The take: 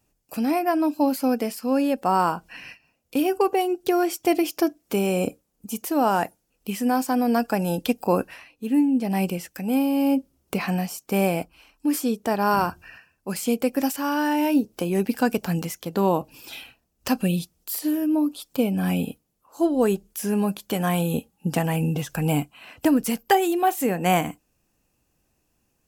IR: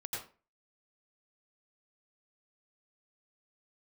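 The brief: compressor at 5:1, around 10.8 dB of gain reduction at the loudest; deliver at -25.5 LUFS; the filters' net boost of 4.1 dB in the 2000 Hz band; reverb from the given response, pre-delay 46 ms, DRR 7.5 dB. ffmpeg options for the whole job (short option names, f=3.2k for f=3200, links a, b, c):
-filter_complex "[0:a]equalizer=f=2k:t=o:g=5.5,acompressor=threshold=-25dB:ratio=5,asplit=2[a][b];[1:a]atrim=start_sample=2205,adelay=46[c];[b][c]afir=irnorm=-1:irlink=0,volume=-8dB[d];[a][d]amix=inputs=2:normalize=0,volume=4dB"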